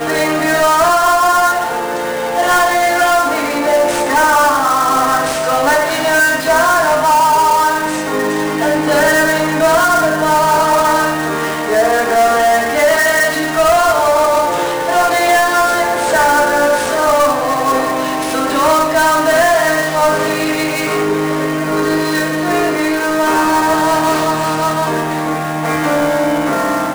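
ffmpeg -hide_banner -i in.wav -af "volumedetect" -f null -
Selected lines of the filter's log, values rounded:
mean_volume: -13.1 dB
max_volume: -6.4 dB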